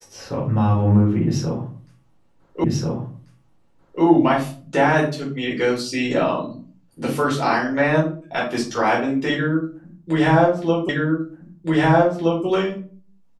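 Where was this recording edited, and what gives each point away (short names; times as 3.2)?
2.64 repeat of the last 1.39 s
10.89 repeat of the last 1.57 s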